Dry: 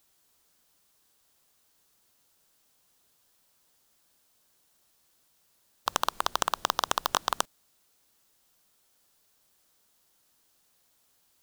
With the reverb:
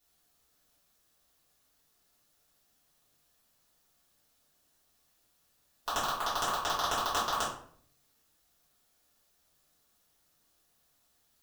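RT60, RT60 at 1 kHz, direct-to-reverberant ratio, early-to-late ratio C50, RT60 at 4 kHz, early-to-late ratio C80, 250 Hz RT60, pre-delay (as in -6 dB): 0.55 s, 0.50 s, -11.5 dB, 3.5 dB, 0.40 s, 8.5 dB, 0.75 s, 3 ms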